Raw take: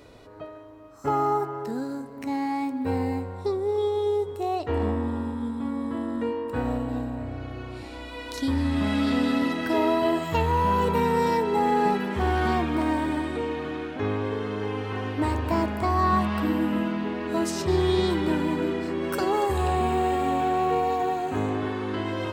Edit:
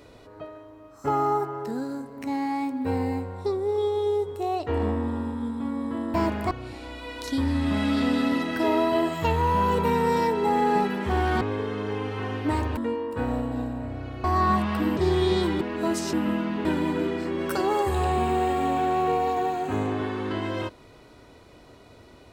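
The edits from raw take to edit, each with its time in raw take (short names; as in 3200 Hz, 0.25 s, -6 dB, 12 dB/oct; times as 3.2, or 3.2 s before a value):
6.14–7.61 swap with 15.5–15.87
12.51–14.14 cut
16.6–17.12 swap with 17.64–18.28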